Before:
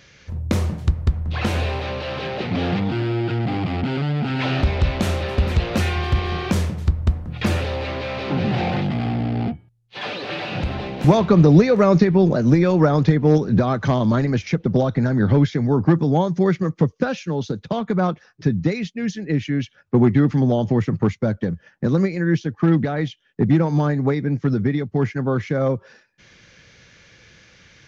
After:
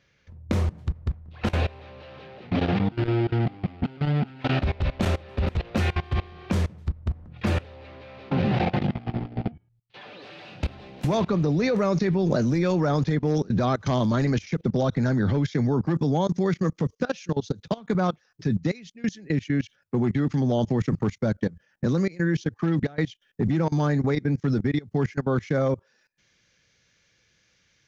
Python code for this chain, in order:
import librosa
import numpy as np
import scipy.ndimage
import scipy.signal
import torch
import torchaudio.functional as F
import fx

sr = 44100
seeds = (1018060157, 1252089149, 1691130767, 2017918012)

y = fx.high_shelf(x, sr, hz=5000.0, db=fx.steps((0.0, -9.0), (10.21, 5.5), (11.84, 11.5)))
y = fx.level_steps(y, sr, step_db=22)